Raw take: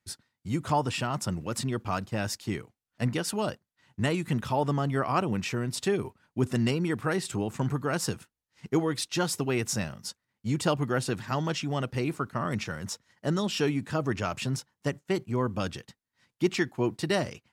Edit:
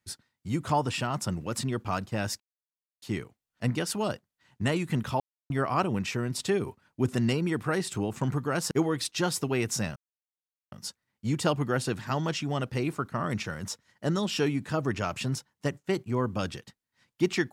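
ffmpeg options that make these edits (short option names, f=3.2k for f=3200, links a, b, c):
-filter_complex "[0:a]asplit=6[a][b][c][d][e][f];[a]atrim=end=2.4,asetpts=PTS-STARTPTS,afade=t=out:st=2.396:d=0.004:c=hsin,apad=pad_dur=0.62[g];[b]atrim=start=2.4:end=4.58,asetpts=PTS-STARTPTS,afade=t=in:d=0.004:c=hsin,afade=t=out:st=2.176:d=0.004:c=hsin[h];[c]atrim=start=4.58:end=4.88,asetpts=PTS-STARTPTS,volume=0[i];[d]atrim=start=4.88:end=8.092,asetpts=PTS-STARTPTS,afade=t=in:d=0.004:c=hsin[j];[e]atrim=start=8.678:end=9.93,asetpts=PTS-STARTPTS,afade=t=out:st=1.248:d=0.004:c=hsin,apad=pad_dur=0.76[k];[f]atrim=start=9.93,asetpts=PTS-STARTPTS,afade=t=in:d=0.004:c=hsin[l];[g][h][i][j]concat=n=4:v=0:a=1[m];[k][l]concat=n=2:v=0:a=1[n];[m][n]acrossfade=d=0.004:c1=hsin:c2=hsin"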